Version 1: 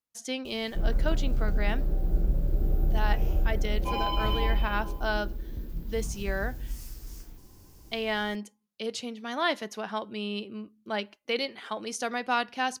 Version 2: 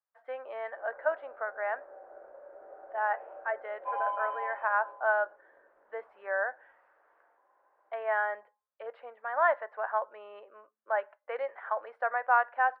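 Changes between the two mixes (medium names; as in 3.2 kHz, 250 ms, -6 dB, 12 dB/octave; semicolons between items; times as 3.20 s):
speech +4.0 dB; master: add elliptic band-pass 560–1700 Hz, stop band 60 dB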